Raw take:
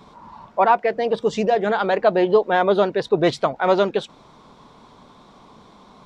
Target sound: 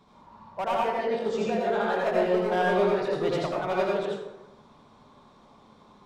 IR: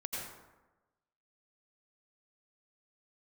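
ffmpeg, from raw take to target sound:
-filter_complex "[0:a]asoftclip=type=hard:threshold=-13dB,asettb=1/sr,asplit=3[link_01][link_02][link_03];[link_01]atrim=end=0.764[link_04];[link_02]atrim=start=0.76:end=3.16,asetpts=PTS-STARTPTS,afade=type=in:duration=0.004:curve=qsin,afade=type=out:start_time=2.396:duration=0.004:curve=qsin,asplit=2[link_05][link_06];[link_06]adelay=22,volume=-4.5dB[link_07];[link_05][link_07]amix=inputs=2:normalize=0,atrim=end_sample=105840[link_08];[link_03]atrim=start=3.156[link_09];[link_04][link_08]acrossfade=duration=0.004:curve1=hsin:curve2=qsin[link_10];[link_10][link_09]acrossfade=duration=0.004:curve1=qsin:curve2=hsin[link_11];[1:a]atrim=start_sample=2205,asetrate=48510,aresample=44100[link_12];[link_11][link_12]afir=irnorm=-1:irlink=0,volume=-8dB"

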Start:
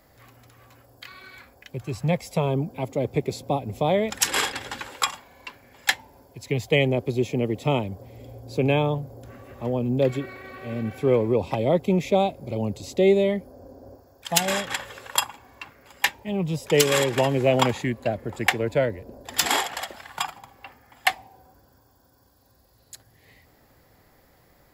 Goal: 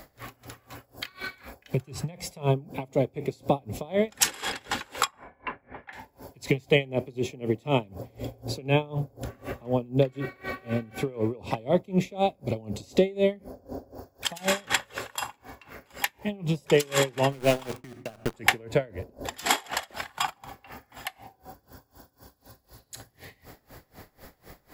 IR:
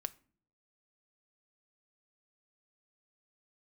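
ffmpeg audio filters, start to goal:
-filter_complex "[0:a]asettb=1/sr,asplit=3[link_01][link_02][link_03];[link_01]atrim=end=5.074[link_04];[link_02]atrim=start=5.07:end=5.93,asetpts=PTS-STARTPTS,afade=type=in:duration=0.004:curve=qsin,afade=type=out:start_time=0.856:duration=0.004:curve=qsin,lowpass=frequency=2000:width=0.5412,lowpass=frequency=2000:width=1.3066[link_05];[link_03]atrim=start=5.926[link_06];[link_04][link_05]acrossfade=duration=0.004:curve1=hsin:curve2=qsin[link_07];[link_07][link_06]acrossfade=duration=0.004:curve1=qsin:curve2=hsin,acompressor=threshold=-39dB:ratio=2,asettb=1/sr,asplit=3[link_08][link_09][link_10];[link_08]atrim=end=17.324[link_11];[link_09]atrim=start=17.32:end=18.34,asetpts=PTS-STARTPTS,afade=type=in:duration=0.004:curve=qsin,afade=type=out:start_time=1.016:duration=0.004:curve=qsin,aeval=exprs='val(0)*gte(abs(val(0)),0.0178)':channel_layout=same[link_12];[link_10]atrim=start=18.336[link_13];[link_11][link_12]acrossfade=duration=0.004:curve1=hsin:curve2=qsin[link_14];[link_14][link_13]acrossfade=duration=0.004:curve1=qsin:curve2=hsin,asplit=2[link_15][link_16];[1:a]atrim=start_sample=2205[link_17];[link_16][link_17]afir=irnorm=-1:irlink=0,volume=12.5dB[link_18];[link_15][link_18]amix=inputs=2:normalize=0,aeval=exprs='val(0)*pow(10,-25*(0.5-0.5*cos(2*PI*4*n/s))/20)':channel_layout=same"

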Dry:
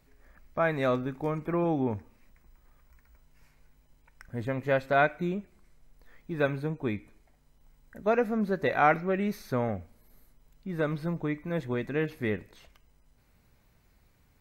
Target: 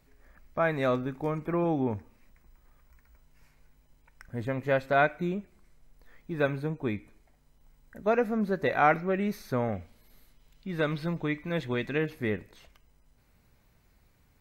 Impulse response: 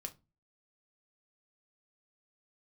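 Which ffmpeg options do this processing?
-filter_complex "[0:a]asettb=1/sr,asplit=3[link_01][link_02][link_03];[link_01]atrim=end=9.724[link_04];[link_02]atrim=start=9.72:end=11.98,asetpts=PTS-STARTPTS,afade=type=in:duration=0.004:curve=qsin,afade=type=out:start_time=2.256:duration=0.004:curve=qsin,equalizer=frequency=3300:width=0.85:gain=9[link_05];[link_03]atrim=start=11.976[link_06];[link_04][link_05]acrossfade=duration=0.004:curve1=hsin:curve2=qsin[link_07];[link_07][link_06]acrossfade=duration=0.004:curve1=qsin:curve2=hsin"

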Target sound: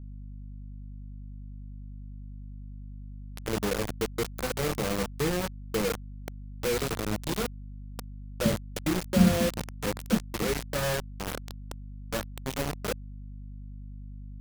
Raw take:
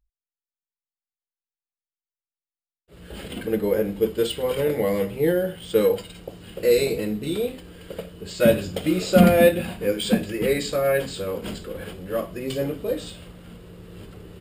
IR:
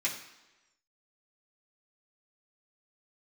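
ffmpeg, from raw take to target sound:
-filter_complex "[0:a]acrossover=split=250[link_01][link_02];[link_02]acompressor=threshold=-25dB:ratio=2.5[link_03];[link_01][link_03]amix=inputs=2:normalize=0,highshelf=frequency=4400:gain=-11,acrusher=bits=3:mix=0:aa=0.000001,aeval=exprs='val(0)+0.0126*(sin(2*PI*50*n/s)+sin(2*PI*2*50*n/s)/2+sin(2*PI*3*50*n/s)/3+sin(2*PI*4*50*n/s)/4+sin(2*PI*5*50*n/s)/5)':channel_layout=same,bass=frequency=250:gain=5,treble=frequency=4000:gain=3,volume=-7dB"

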